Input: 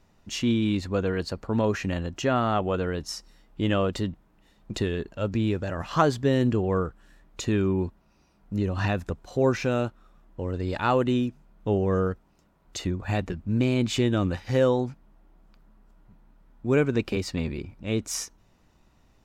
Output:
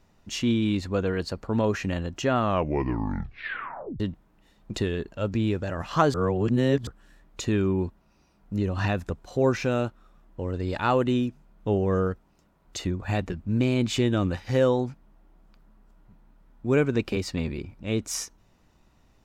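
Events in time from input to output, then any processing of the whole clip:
0:02.36: tape stop 1.64 s
0:06.14–0:06.87: reverse

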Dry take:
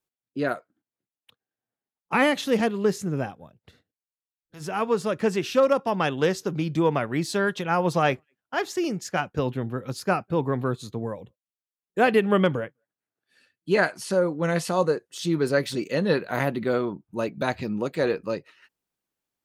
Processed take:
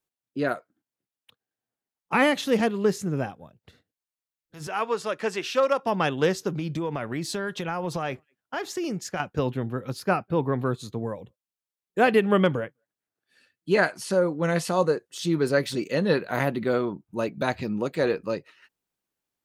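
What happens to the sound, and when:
0:04.67–0:05.83: meter weighting curve A
0:06.51–0:09.20: downward compressor, threshold −25 dBFS
0:09.88–0:10.57: parametric band 7,200 Hz −4.5 dB → −11 dB

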